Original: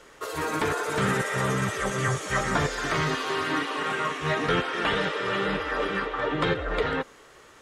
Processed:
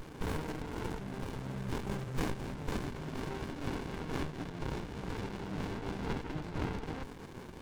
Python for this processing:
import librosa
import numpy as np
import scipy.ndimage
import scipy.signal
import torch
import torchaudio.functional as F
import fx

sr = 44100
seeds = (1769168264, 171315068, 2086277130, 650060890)

y = scipy.signal.sosfilt(scipy.signal.butter(4, 91.0, 'highpass', fs=sr, output='sos'), x)
y = fx.over_compress(y, sr, threshold_db=-36.0, ratio=-1.0)
y = fx.running_max(y, sr, window=65)
y = y * 10.0 ** (1.5 / 20.0)